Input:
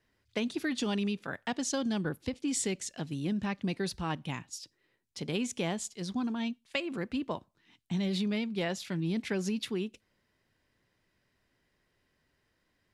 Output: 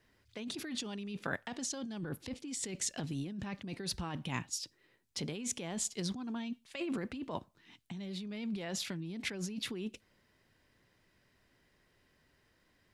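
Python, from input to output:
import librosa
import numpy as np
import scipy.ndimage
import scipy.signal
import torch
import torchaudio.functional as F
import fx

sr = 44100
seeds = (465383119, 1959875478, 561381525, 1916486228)

y = fx.over_compress(x, sr, threshold_db=-38.0, ratio=-1.0)
y = y * librosa.db_to_amplitude(-1.0)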